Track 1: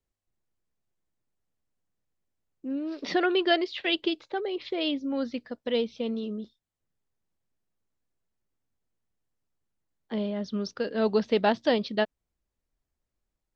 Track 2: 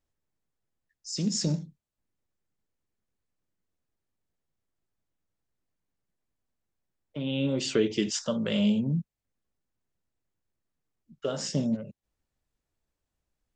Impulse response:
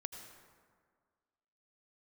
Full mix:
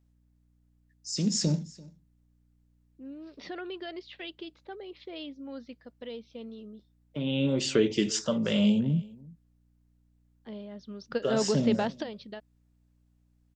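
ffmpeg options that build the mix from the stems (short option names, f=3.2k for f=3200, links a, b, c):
-filter_complex "[0:a]alimiter=limit=-19dB:level=0:latency=1:release=92,adelay=350,volume=0.5dB[a];[1:a]aeval=exprs='val(0)+0.000501*(sin(2*PI*60*n/s)+sin(2*PI*2*60*n/s)/2+sin(2*PI*3*60*n/s)/3+sin(2*PI*4*60*n/s)/4+sin(2*PI*5*60*n/s)/5)':c=same,volume=1dB,asplit=3[b][c][d];[c]volume=-22.5dB[e];[d]apad=whole_len=613113[f];[a][f]sidechaingate=range=-12dB:threshold=-54dB:ratio=16:detection=peak[g];[e]aecho=0:1:340:1[h];[g][b][h]amix=inputs=3:normalize=0"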